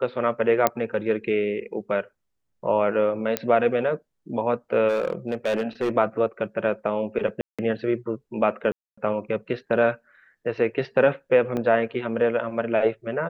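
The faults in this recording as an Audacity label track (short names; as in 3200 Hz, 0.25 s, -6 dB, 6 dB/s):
0.670000	0.670000	pop -4 dBFS
3.370000	3.370000	pop -7 dBFS
4.880000	5.900000	clipped -19.5 dBFS
7.410000	7.590000	gap 0.176 s
8.720000	8.970000	gap 0.255 s
11.570000	11.570000	gap 2.2 ms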